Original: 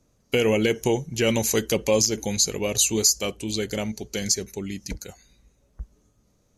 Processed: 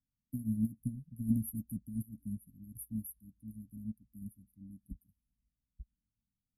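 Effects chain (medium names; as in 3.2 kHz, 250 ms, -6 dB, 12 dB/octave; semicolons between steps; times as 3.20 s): brick-wall FIR band-stop 290–9300 Hz; upward expansion 2.5:1, over -38 dBFS; trim -1.5 dB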